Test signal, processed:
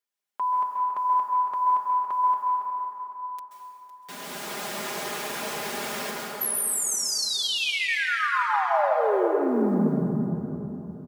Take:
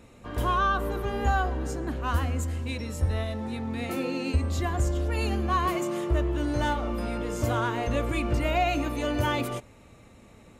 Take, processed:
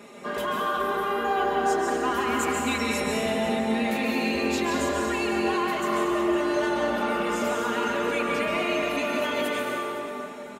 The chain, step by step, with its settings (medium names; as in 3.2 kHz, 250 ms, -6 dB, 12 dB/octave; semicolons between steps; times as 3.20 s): high-pass 290 Hz 12 dB/octave; treble shelf 4.3 kHz -3 dB; comb 4.9 ms, depth 88%; dynamic bell 2.6 kHz, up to +4 dB, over -45 dBFS, Q 1.1; in parallel at -1 dB: compression 8:1, threshold -34 dBFS; on the sum: peak limiter -21.5 dBFS; gain riding within 3 dB 0.5 s; short-mantissa float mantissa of 6-bit; on a send: feedback delay 508 ms, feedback 29%, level -14 dB; on the sum: plate-style reverb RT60 3.4 s, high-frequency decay 0.45×, pre-delay 120 ms, DRR -2.5 dB